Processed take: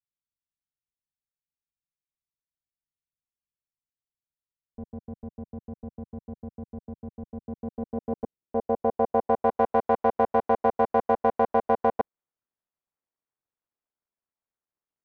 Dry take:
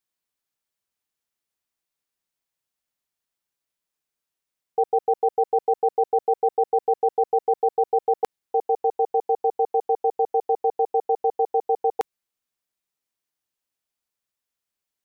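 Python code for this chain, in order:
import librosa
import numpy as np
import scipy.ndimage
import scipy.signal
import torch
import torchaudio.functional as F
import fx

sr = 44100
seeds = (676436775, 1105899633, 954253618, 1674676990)

y = fx.cycle_switch(x, sr, every=2, mode='muted')
y = fx.filter_sweep_lowpass(y, sr, from_hz=150.0, to_hz=1300.0, start_s=7.26, end_s=9.63, q=0.81)
y = fx.dynamic_eq(y, sr, hz=630.0, q=1.1, threshold_db=-33.0, ratio=4.0, max_db=4)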